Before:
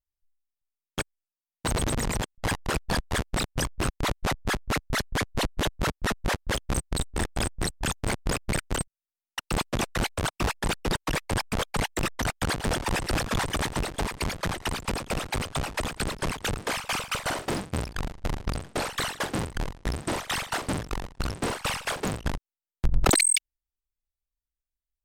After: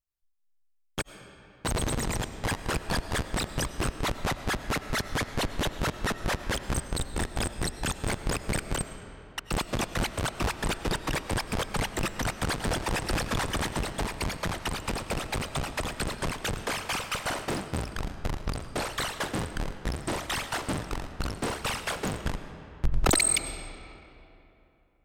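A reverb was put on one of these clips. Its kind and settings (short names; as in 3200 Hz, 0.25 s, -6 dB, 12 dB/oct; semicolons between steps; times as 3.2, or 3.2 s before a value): digital reverb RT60 3 s, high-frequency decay 0.65×, pre-delay 60 ms, DRR 10 dB; gain -2 dB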